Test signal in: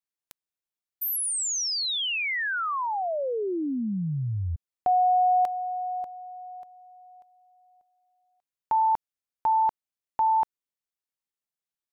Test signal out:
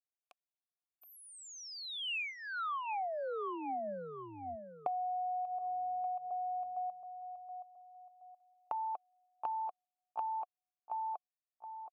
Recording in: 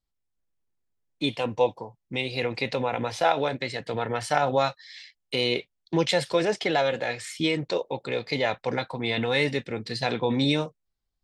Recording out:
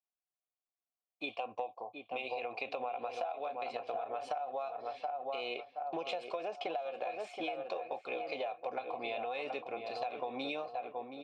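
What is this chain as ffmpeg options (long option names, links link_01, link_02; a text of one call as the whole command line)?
ffmpeg -i in.wav -filter_complex "[0:a]agate=range=-6dB:threshold=-48dB:ratio=16:release=50:detection=rms,asplit=3[link_01][link_02][link_03];[link_01]bandpass=frequency=730:width_type=q:width=8,volume=0dB[link_04];[link_02]bandpass=frequency=1090:width_type=q:width=8,volume=-6dB[link_05];[link_03]bandpass=frequency=2440:width_type=q:width=8,volume=-9dB[link_06];[link_04][link_05][link_06]amix=inputs=3:normalize=0,equalizer=frequency=140:width=3.1:gain=-9,asplit=2[link_07][link_08];[link_08]adelay=723,lowpass=frequency=1800:poles=1,volume=-8dB,asplit=2[link_09][link_10];[link_10]adelay=723,lowpass=frequency=1800:poles=1,volume=0.35,asplit=2[link_11][link_12];[link_12]adelay=723,lowpass=frequency=1800:poles=1,volume=0.35,asplit=2[link_13][link_14];[link_14]adelay=723,lowpass=frequency=1800:poles=1,volume=0.35[link_15];[link_09][link_11][link_13][link_15]amix=inputs=4:normalize=0[link_16];[link_07][link_16]amix=inputs=2:normalize=0,acompressor=threshold=-42dB:ratio=20:attack=29:release=109:knee=1:detection=rms,volume=6dB" out.wav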